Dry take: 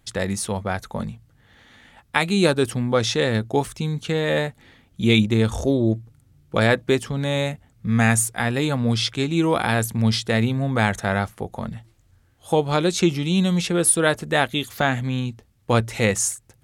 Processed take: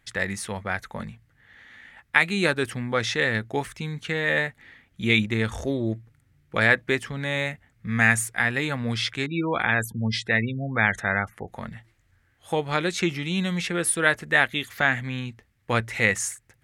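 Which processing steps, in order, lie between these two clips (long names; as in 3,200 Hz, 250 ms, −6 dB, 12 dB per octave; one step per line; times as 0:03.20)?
0:09.26–0:11.48: gate on every frequency bin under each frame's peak −25 dB strong
parametric band 1,900 Hz +13 dB 1 octave
level −7 dB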